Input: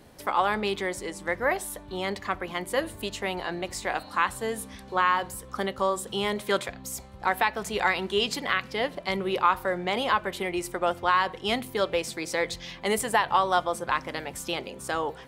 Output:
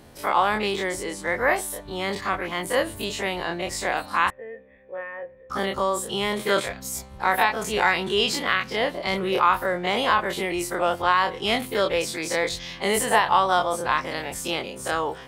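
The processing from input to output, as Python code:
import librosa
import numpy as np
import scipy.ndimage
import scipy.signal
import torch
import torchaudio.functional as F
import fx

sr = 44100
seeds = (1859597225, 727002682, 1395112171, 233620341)

y = fx.spec_dilate(x, sr, span_ms=60)
y = fx.formant_cascade(y, sr, vowel='e', at=(4.3, 5.5))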